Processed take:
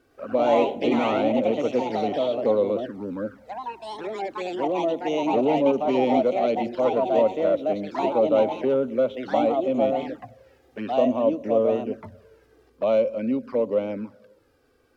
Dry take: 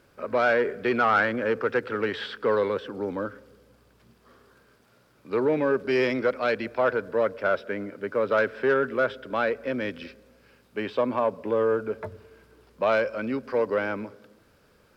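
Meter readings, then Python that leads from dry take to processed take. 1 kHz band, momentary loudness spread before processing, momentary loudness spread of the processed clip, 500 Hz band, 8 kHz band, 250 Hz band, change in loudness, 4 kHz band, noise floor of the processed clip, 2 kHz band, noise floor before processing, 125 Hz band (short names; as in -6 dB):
+3.0 dB, 11 LU, 13 LU, +3.5 dB, n/a, +6.0 dB, +2.5 dB, +1.5 dB, -62 dBFS, -10.0 dB, -61 dBFS, +1.0 dB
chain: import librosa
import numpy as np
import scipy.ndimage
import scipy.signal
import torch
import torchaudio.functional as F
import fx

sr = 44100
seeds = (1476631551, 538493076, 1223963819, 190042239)

y = fx.small_body(x, sr, hz=(240.0, 540.0), ring_ms=30, db=10)
y = fx.echo_pitch(y, sr, ms=108, semitones=3, count=3, db_per_echo=-3.0)
y = fx.env_flanger(y, sr, rest_ms=2.7, full_db=-17.0)
y = F.gain(torch.from_numpy(y), -3.0).numpy()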